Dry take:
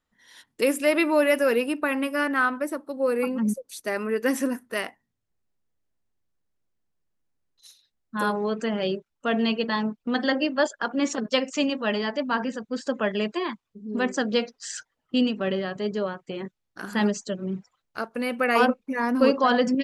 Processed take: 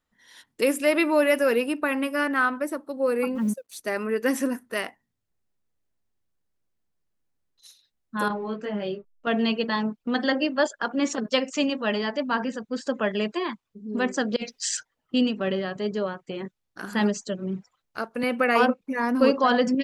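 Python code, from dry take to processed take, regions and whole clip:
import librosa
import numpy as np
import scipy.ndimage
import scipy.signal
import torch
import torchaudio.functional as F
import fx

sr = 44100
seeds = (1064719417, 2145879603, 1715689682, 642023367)

y = fx.chain(x, sr, fx.law_mismatch(coded='A'),
    fx.highpass(hz=41.0, slope=12), at=(3.35, 3.76))
y = fx.chain(y, sr, fx.backlash(play_db=-50.0),
    fx.air_absorb(metres=160.0),
    fx.detune_double(cents=18), at=(8.28, 9.27))
y = fx.chain(y, sr, fx.curve_eq(hz=(140.0, 1300.0, 2300.0), db=(0, -8, 6)),
    fx.over_compress(threshold_db=-30.0, ratio=-0.5), at=(14.36, 14.77))
y = fx.chain(y, sr, fx.highpass(hz=78.0, slope=12),
    fx.high_shelf(hz=8500.0, db=-6.0),
    fx.band_squash(depth_pct=40), at=(18.23, 18.81))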